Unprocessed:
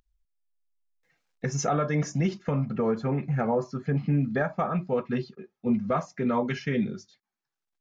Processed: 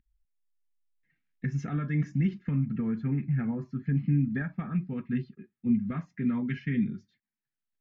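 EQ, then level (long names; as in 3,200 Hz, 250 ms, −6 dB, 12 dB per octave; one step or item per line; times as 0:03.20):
drawn EQ curve 270 Hz 0 dB, 550 Hz −23 dB, 1,200 Hz −15 dB, 1,800 Hz −3 dB, 3,200 Hz −10 dB, 5,900 Hz −23 dB
0.0 dB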